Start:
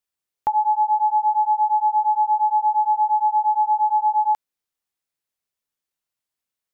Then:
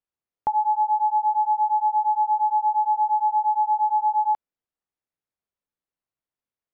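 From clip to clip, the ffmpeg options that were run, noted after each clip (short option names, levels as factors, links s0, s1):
-af "lowpass=f=1000:p=1"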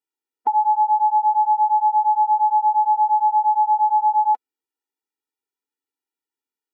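-af "afftfilt=real='re*eq(mod(floor(b*sr/1024/250),2),1)':imag='im*eq(mod(floor(b*sr/1024/250),2),1)':win_size=1024:overlap=0.75,volume=1.58"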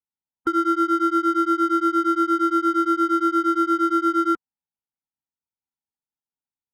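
-af "adynamicsmooth=sensitivity=7:basefreq=770,aeval=exprs='val(0)*sin(2*PI*520*n/s)':c=same"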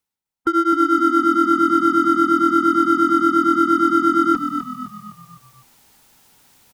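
-filter_complex "[0:a]areverse,acompressor=mode=upward:threshold=0.0355:ratio=2.5,areverse,asplit=6[s0][s1][s2][s3][s4][s5];[s1]adelay=255,afreqshift=-41,volume=0.422[s6];[s2]adelay=510,afreqshift=-82,volume=0.197[s7];[s3]adelay=765,afreqshift=-123,volume=0.0933[s8];[s4]adelay=1020,afreqshift=-164,volume=0.0437[s9];[s5]adelay=1275,afreqshift=-205,volume=0.0207[s10];[s0][s6][s7][s8][s9][s10]amix=inputs=6:normalize=0,volume=1.5"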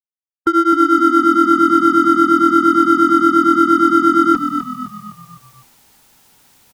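-af "agate=range=0.0224:threshold=0.00282:ratio=3:detection=peak,volume=1.58"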